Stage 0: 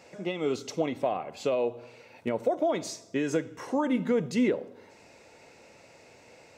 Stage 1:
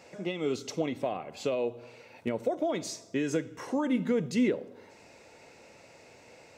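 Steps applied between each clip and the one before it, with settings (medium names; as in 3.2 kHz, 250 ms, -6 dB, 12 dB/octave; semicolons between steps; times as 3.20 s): dynamic bell 870 Hz, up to -5 dB, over -40 dBFS, Q 0.78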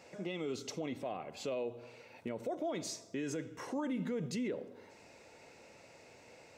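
peak limiter -26 dBFS, peak gain reduction 9 dB; trim -3.5 dB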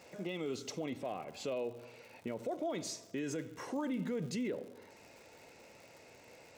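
crackle 130 per s -48 dBFS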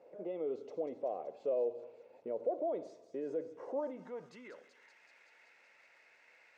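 feedback echo behind a high-pass 190 ms, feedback 77%, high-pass 3.8 kHz, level -8 dB; band-pass sweep 500 Hz -> 1.8 kHz, 3.65–4.76 s; dynamic bell 670 Hz, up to +5 dB, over -52 dBFS, Q 0.77; trim +2 dB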